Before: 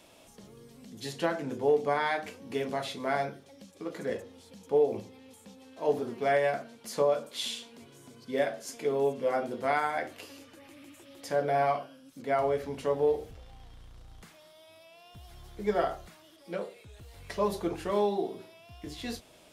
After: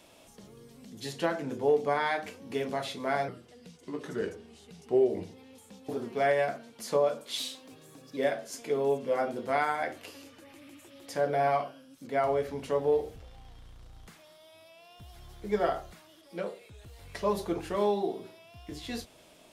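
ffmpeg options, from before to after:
ffmpeg -i in.wav -filter_complex "[0:a]asplit=6[link_01][link_02][link_03][link_04][link_05][link_06];[link_01]atrim=end=3.284[link_07];[link_02]atrim=start=3.28:end=5.08,asetpts=PTS-STARTPTS,asetrate=38808,aresample=44100[link_08];[link_03]atrim=start=5.076:end=5.642[link_09];[link_04]atrim=start=5.938:end=7.434[link_10];[link_05]atrim=start=7.43:end=8.32,asetpts=PTS-STARTPTS,asetrate=49392,aresample=44100[link_11];[link_06]atrim=start=8.316[link_12];[link_07][link_08]acrossfade=duration=0.004:curve1=hsin:curve2=hsin[link_13];[link_13][link_09]acrossfade=duration=0.004:curve1=hsin:curve2=hsin[link_14];[link_14][link_10]acrossfade=duration=0.004:curve1=hsin:curve2=hsin[link_15];[link_15][link_11]acrossfade=duration=0.004:curve1=hsin:curve2=hsin[link_16];[link_16][link_12]acrossfade=duration=0.004:curve1=hsin:curve2=hsin" out.wav

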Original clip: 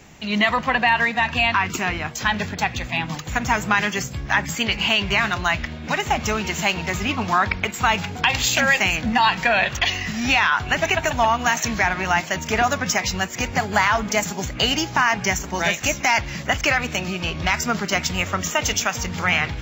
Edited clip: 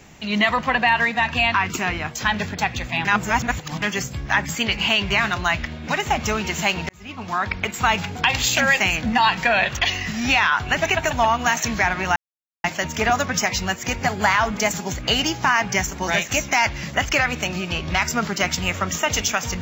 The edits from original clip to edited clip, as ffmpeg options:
ffmpeg -i in.wav -filter_complex "[0:a]asplit=5[link_01][link_02][link_03][link_04][link_05];[link_01]atrim=end=3.052[link_06];[link_02]atrim=start=3.048:end=3.822,asetpts=PTS-STARTPTS,areverse[link_07];[link_03]atrim=start=3.818:end=6.89,asetpts=PTS-STARTPTS,afade=type=out:start_time=3.068:duration=0.004:curve=hsin[link_08];[link_04]atrim=start=6.89:end=12.16,asetpts=PTS-STARTPTS,afade=type=in:duration=0.84,afade=type=out:start_time=5.266:duration=0.004:curve=hsin,apad=pad_dur=0.48[link_09];[link_05]atrim=start=12.16,asetpts=PTS-STARTPTS,afade=type=in:duration=0.004:curve=hsin[link_10];[link_06][link_07]acrossfade=duration=0.004:curve1=hsin:curve2=hsin[link_11];[link_08][link_09][link_10]concat=n=3:v=0:a=1[link_12];[link_11][link_12]acrossfade=duration=0.004:curve1=hsin:curve2=hsin" out.wav

